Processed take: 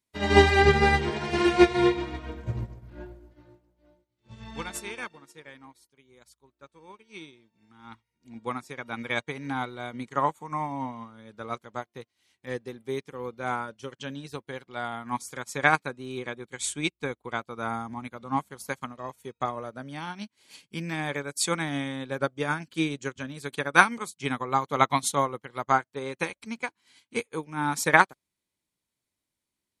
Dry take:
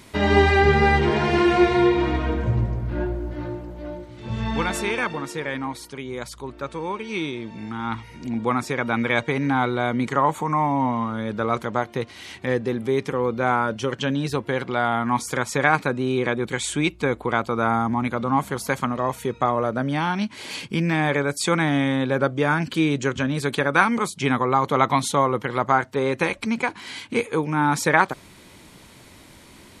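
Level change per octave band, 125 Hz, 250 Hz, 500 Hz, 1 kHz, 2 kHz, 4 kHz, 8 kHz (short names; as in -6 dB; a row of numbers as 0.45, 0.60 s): -8.5, -8.0, -6.5, -5.5, -4.0, -4.0, -2.0 dB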